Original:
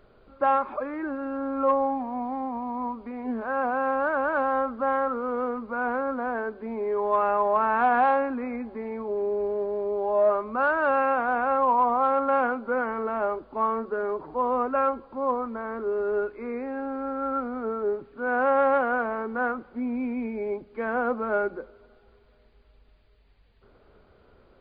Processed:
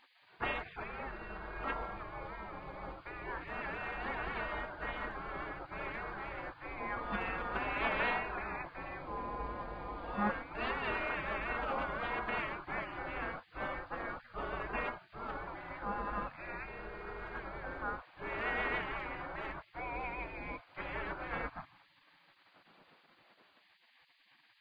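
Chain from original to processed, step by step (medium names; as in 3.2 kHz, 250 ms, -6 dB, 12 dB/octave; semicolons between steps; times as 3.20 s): spectral gate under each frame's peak -25 dB weak; treble shelf 3.1 kHz -9 dB; trim +11 dB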